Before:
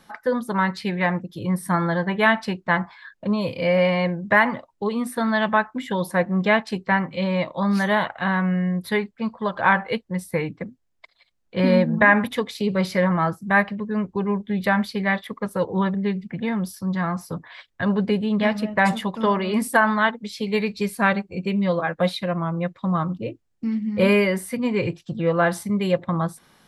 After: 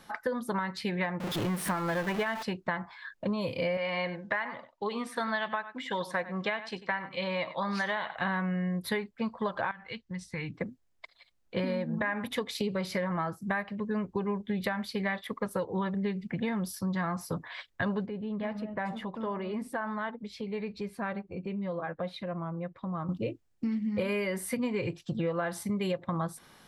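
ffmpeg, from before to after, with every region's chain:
ffmpeg -i in.wav -filter_complex "[0:a]asettb=1/sr,asplit=3[link_01][link_02][link_03];[link_01]atrim=end=1.204[link_04];[link_02]atrim=start=1.2:end=2.43,asetpts=PTS-STARTPTS,afade=type=in:duration=0.004:curve=qsin,afade=type=out:start_time=1.226:duration=0.004:curve=qsin,aeval=exprs='val(0)+0.5*0.0668*sgn(val(0))':channel_layout=same,bass=frequency=250:gain=-4,treble=frequency=4000:gain=-7[link_05];[link_03]atrim=start=2.426[link_06];[link_04][link_05]acrossfade=duration=0.004:curve1=hsin:curve2=qsin[link_07];[link_07][link_06]acrossfade=duration=0.004:curve1=qsin:curve2=hsin,asettb=1/sr,asplit=3[link_08][link_09][link_10];[link_08]atrim=end=3.774[link_11];[link_09]atrim=start=3.77:end=8.16,asetpts=PTS-STARTPTS,afade=type=in:duration=0.004:curve=qsin,afade=type=out:start_time=4.386:duration=0.004:curve=qsin,lowpass=5700,lowshelf=frequency=480:gain=-11.5,aecho=1:1:95:0.15,atrim=end_sample=193599[link_12];[link_10]atrim=start=8.156[link_13];[link_11][link_12]acrossfade=duration=0.004:curve1=hsin:curve2=qsin[link_14];[link_14][link_13]acrossfade=duration=0.004:curve1=qsin:curve2=hsin,asettb=1/sr,asplit=3[link_15][link_16][link_17];[link_15]atrim=end=9.714[link_18];[link_16]atrim=start=9.71:end=10.54,asetpts=PTS-STARTPTS,afade=type=in:duration=0.004:curve=qsin,afade=type=out:start_time=0.826:duration=0.004:curve=qsin,lowpass=frequency=6700:width=0.5412,lowpass=frequency=6700:width=1.3066,equalizer=frequency=540:width=0.63:gain=-14,acompressor=threshold=-32dB:ratio=3:attack=3.2:release=140:knee=1:detection=peak[link_19];[link_17]atrim=start=10.536[link_20];[link_18][link_19]acrossfade=duration=0.004:curve1=hsin:curve2=qsin[link_21];[link_21][link_20]acrossfade=duration=0.004:curve1=qsin:curve2=hsin,asettb=1/sr,asplit=3[link_22][link_23][link_24];[link_22]atrim=end=18.064[link_25];[link_23]atrim=start=18.06:end=23.09,asetpts=PTS-STARTPTS,afade=type=in:duration=0.004:curve=qsin,afade=type=out:start_time=5.026:duration=0.004:curve=qsin,lowpass=frequency=1300:poles=1,acompressor=threshold=-38dB:ratio=2:attack=3.2:release=140:knee=1:detection=peak[link_26];[link_24]atrim=start=23.086[link_27];[link_25][link_26]acrossfade=duration=0.004:curve1=hsin:curve2=qsin[link_28];[link_28][link_27]acrossfade=duration=0.004:curve1=qsin:curve2=hsin,alimiter=limit=-13dB:level=0:latency=1:release=457,equalizer=frequency=190:width_type=o:width=0.77:gain=-2.5,acompressor=threshold=-28dB:ratio=6" out.wav

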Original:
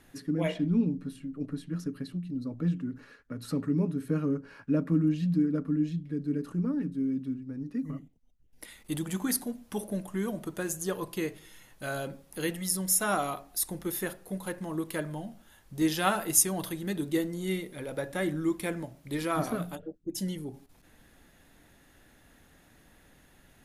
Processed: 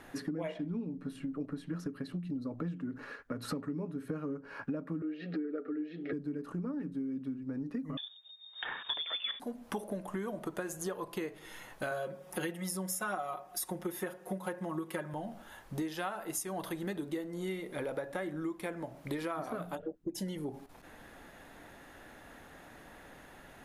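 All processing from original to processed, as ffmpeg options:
ffmpeg -i in.wav -filter_complex "[0:a]asettb=1/sr,asplit=3[link_01][link_02][link_03];[link_01]atrim=end=5.024[link_04];[link_02]atrim=start=5.02:end=6.13,asetpts=PTS-STARTPTS,afade=type=in:duration=0.004:curve=qsin,afade=type=out:start_time=1.106:duration=0.004:curve=qsin,highpass=frequency=290:width=0.5412,highpass=frequency=290:width=1.3066,equalizer=frequency=420:width_type=q:width=4:gain=10,equalizer=frequency=1200:width_type=q:width=4:gain=6,equalizer=frequency=1900:width_type=q:width=4:gain=5,equalizer=frequency=3300:width_type=q:width=4:gain=-3,lowpass=frequency=4000:width=0.5412,lowpass=frequency=4000:width=1.3066,acompressor=mode=upward:threshold=-30dB:ratio=2.5:attack=3.2:release=140:knee=2.83:detection=peak,asuperstop=centerf=1000:order=8:qfactor=2.5[link_05];[link_03]atrim=start=6.126[link_06];[link_04][link_05]acrossfade=duration=0.004:curve1=hsin:curve2=qsin[link_07];[link_07][link_06]acrossfade=duration=0.004:curve1=qsin:curve2=hsin,asettb=1/sr,asplit=3[link_08][link_09][link_10];[link_08]atrim=end=7.974[link_11];[link_09]atrim=start=7.97:end=9.4,asetpts=PTS-STARTPTS,afade=type=in:duration=0.004:curve=qsin,afade=type=out:start_time=1.426:duration=0.004:curve=qsin,lowpass=frequency=3100:width_type=q:width=0.5098,lowpass=frequency=3100:width_type=q:width=0.6013,lowpass=frequency=3100:width_type=q:width=0.9,lowpass=frequency=3100:width_type=q:width=2.563,afreqshift=-3700,acontrast=66[link_12];[link_10]atrim=start=9.396[link_13];[link_11][link_12]acrossfade=duration=0.004:curve1=hsin:curve2=qsin[link_14];[link_14][link_13]acrossfade=duration=0.004:curve1=qsin:curve2=hsin,asettb=1/sr,asplit=3[link_15][link_16][link_17];[link_15]atrim=end=11.914[link_18];[link_16]atrim=start=11.91:end=15.14,asetpts=PTS-STARTPTS,afade=type=in:duration=0.004:curve=qsin,afade=type=out:start_time=3.226:duration=0.004:curve=qsin,highpass=69,bandreject=frequency=4200:width=12,aecho=1:1:5.5:0.98,atrim=end_sample=142443[link_19];[link_17]atrim=start=15.136[link_20];[link_18][link_19]acrossfade=duration=0.004:curve1=hsin:curve2=qsin[link_21];[link_21][link_20]acrossfade=duration=0.004:curve1=qsin:curve2=hsin,equalizer=frequency=850:width=0.37:gain=11.5,acompressor=threshold=-34dB:ratio=12" out.wav

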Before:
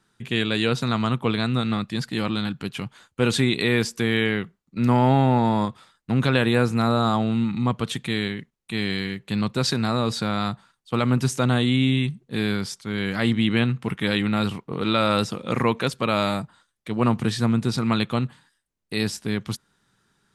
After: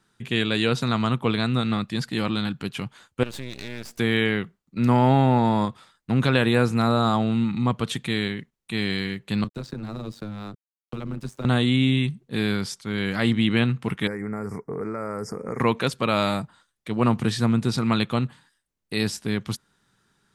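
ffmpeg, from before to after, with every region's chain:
ffmpeg -i in.wav -filter_complex "[0:a]asettb=1/sr,asplit=3[link_01][link_02][link_03];[link_01]atrim=end=3.234[link_04];[link_02]atrim=start=3.23:end=3.99,asetpts=PTS-STARTPTS,afade=type=in:duration=0.004:curve=qsin,afade=type=out:start_time=0.756:duration=0.004:curve=qsin,aeval=exprs='max(val(0),0)':channel_layout=same,acompressor=threshold=-35dB:ratio=2.5:attack=3.2:release=140:knee=1:detection=peak[link_05];[link_03]atrim=start=3.986[link_06];[link_04][link_05]acrossfade=duration=0.004:curve1=hsin:curve2=qsin[link_07];[link_07][link_06]acrossfade=duration=0.004:curve1=qsin:curve2=hsin,asettb=1/sr,asplit=3[link_08][link_09][link_10];[link_08]atrim=end=9.444[link_11];[link_09]atrim=start=9.44:end=11.45,asetpts=PTS-STARTPTS,afade=type=in:duration=0.004:curve=qsin,afade=type=out:start_time=2.006:duration=0.004:curve=qsin,aeval=exprs='sgn(val(0))*max(abs(val(0))-0.0141,0)':channel_layout=same,acrossover=split=180|470|1500[link_12][link_13][link_14][link_15];[link_12]acompressor=threshold=-33dB:ratio=3[link_16];[link_13]acompressor=threshold=-34dB:ratio=3[link_17];[link_14]acompressor=threshold=-44dB:ratio=3[link_18];[link_15]acompressor=threshold=-48dB:ratio=3[link_19];[link_16][link_17][link_18][link_19]amix=inputs=4:normalize=0,tremolo=f=100:d=0.75[link_20];[link_10]atrim=start=11.446[link_21];[link_11][link_20]acrossfade=duration=0.004:curve1=hsin:curve2=qsin[link_22];[link_22][link_21]acrossfade=duration=0.004:curve1=qsin:curve2=hsin,asettb=1/sr,asplit=3[link_23][link_24][link_25];[link_23]atrim=end=14.074[link_26];[link_24]atrim=start=14.07:end=15.6,asetpts=PTS-STARTPTS,afade=type=in:duration=0.004:curve=qsin,afade=type=out:start_time=1.526:duration=0.004:curve=qsin,equalizer=frequency=430:width=6.6:gain=12,acompressor=threshold=-27dB:ratio=4:attack=3.2:release=140:knee=1:detection=peak,asuperstop=centerf=3300:order=12:qfactor=1.2[link_27];[link_25]atrim=start=15.596[link_28];[link_26][link_27]acrossfade=duration=0.004:curve1=hsin:curve2=qsin[link_29];[link_29][link_28]acrossfade=duration=0.004:curve1=qsin:curve2=hsin" out.wav

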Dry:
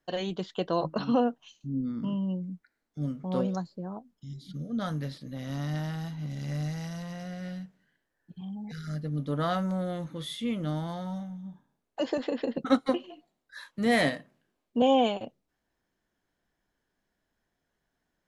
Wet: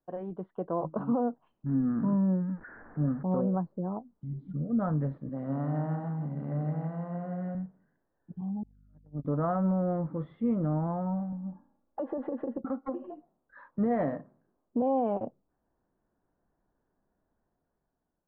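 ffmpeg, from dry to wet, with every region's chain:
ffmpeg -i in.wav -filter_complex "[0:a]asettb=1/sr,asplit=3[link_01][link_02][link_03];[link_01]atrim=end=1.664[link_04];[link_02]atrim=start=1.66:end=3.23,asetpts=PTS-STARTPTS,afade=type=in:duration=0.004:curve=qsin,afade=type=out:start_time=1.566:duration=0.004:curve=qsin,aeval=exprs='val(0)+0.5*0.00398*sgn(val(0))':channel_layout=same,lowpass=frequency=1700:width_type=q:width=7.1[link_05];[link_03]atrim=start=3.226[link_06];[link_04][link_05]acrossfade=duration=0.004:curve1=hsin:curve2=qsin[link_07];[link_07][link_06]acrossfade=duration=0.004:curve1=qsin:curve2=hsin,asettb=1/sr,asplit=3[link_08][link_09][link_10];[link_08]atrim=end=5.294[link_11];[link_09]atrim=start=5.29:end=7.55,asetpts=PTS-STARTPTS,afade=type=in:duration=0.004:curve=qsin,afade=type=out:start_time=2.256:duration=0.004:curve=qsin,highpass=170,aecho=1:1:167:0.473,atrim=end_sample=99666[link_12];[link_10]atrim=start=7.546[link_13];[link_11][link_12]acrossfade=duration=0.004:curve1=hsin:curve2=qsin[link_14];[link_14][link_13]acrossfade=duration=0.004:curve1=qsin:curve2=hsin,asettb=1/sr,asplit=3[link_15][link_16][link_17];[link_15]atrim=end=8.634[link_18];[link_16]atrim=start=8.63:end=9.25,asetpts=PTS-STARTPTS,afade=type=in:duration=0.004:curve=qsin,afade=type=out:start_time=0.616:duration=0.004:curve=qsin,agate=range=-40dB:threshold=-29dB:ratio=16:release=100:detection=peak,aeval=exprs='val(0)+0.000708*(sin(2*PI*50*n/s)+sin(2*PI*2*50*n/s)/2+sin(2*PI*3*50*n/s)/3+sin(2*PI*4*50*n/s)/4+sin(2*PI*5*50*n/s)/5)':channel_layout=same[link_19];[link_17]atrim=start=9.246[link_20];[link_18][link_19]acrossfade=duration=0.004:curve1=hsin:curve2=qsin[link_21];[link_21][link_20]acrossfade=duration=0.004:curve1=qsin:curve2=hsin,asettb=1/sr,asplit=3[link_22][link_23][link_24];[link_22]atrim=end=11.324[link_25];[link_23]atrim=start=11.32:end=13.1,asetpts=PTS-STARTPTS,afade=type=in:duration=0.004:curve=qsin,afade=type=out:start_time=1.776:duration=0.004:curve=qsin,aecho=1:1:3.6:0.77,atrim=end_sample=78498,acompressor=threshold=-35dB:ratio=5:attack=3.2:release=140:knee=1:detection=peak[link_26];[link_24]atrim=start=13.096[link_27];[link_25][link_26]acrossfade=duration=0.004:curve1=hsin:curve2=qsin[link_28];[link_28][link_27]acrossfade=duration=0.004:curve1=qsin:curve2=hsin,lowpass=frequency=1200:width=0.5412,lowpass=frequency=1200:width=1.3066,dynaudnorm=framelen=320:gausssize=7:maxgain=9dB,alimiter=limit=-15dB:level=0:latency=1:release=90,volume=-5dB" out.wav

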